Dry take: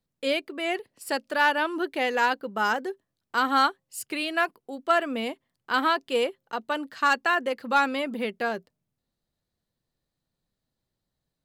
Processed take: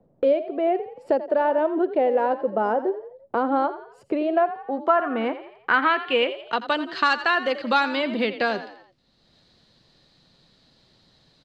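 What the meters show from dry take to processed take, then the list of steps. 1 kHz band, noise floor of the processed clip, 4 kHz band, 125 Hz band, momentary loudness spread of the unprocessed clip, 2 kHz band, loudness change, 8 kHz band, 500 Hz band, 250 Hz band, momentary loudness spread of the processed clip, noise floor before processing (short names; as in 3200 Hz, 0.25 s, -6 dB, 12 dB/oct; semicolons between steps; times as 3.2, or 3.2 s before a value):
+2.0 dB, -62 dBFS, +0.5 dB, n/a, 10 LU, +0.5 dB, +3.0 dB, under -10 dB, +7.0 dB, +5.0 dB, 8 LU, -84 dBFS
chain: frequency-shifting echo 85 ms, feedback 37%, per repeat +41 Hz, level -14 dB; low-pass sweep 610 Hz -> 4300 Hz, 4.22–6.75; three-band squash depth 70%; gain +2 dB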